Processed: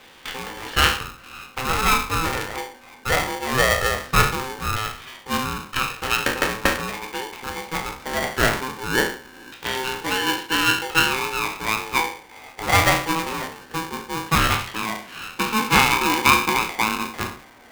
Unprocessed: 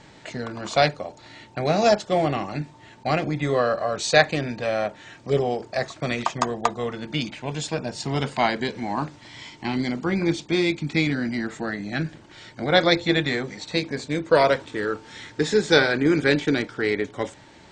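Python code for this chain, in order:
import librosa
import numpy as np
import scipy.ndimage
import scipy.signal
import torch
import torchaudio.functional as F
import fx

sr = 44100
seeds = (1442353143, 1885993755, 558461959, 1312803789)

y = fx.spec_trails(x, sr, decay_s=0.49)
y = fx.filter_lfo_lowpass(y, sr, shape='saw_down', hz=0.21, low_hz=970.0, high_hz=2800.0, q=5.7)
y = y * np.sign(np.sin(2.0 * np.pi * 650.0 * np.arange(len(y)) / sr))
y = y * librosa.db_to_amplitude(-4.0)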